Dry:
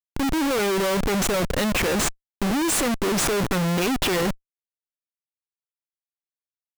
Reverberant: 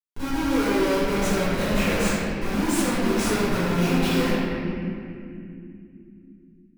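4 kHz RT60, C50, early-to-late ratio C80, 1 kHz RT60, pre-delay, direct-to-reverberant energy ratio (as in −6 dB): 1.7 s, −4.5 dB, −2.0 dB, 2.1 s, 3 ms, −15.0 dB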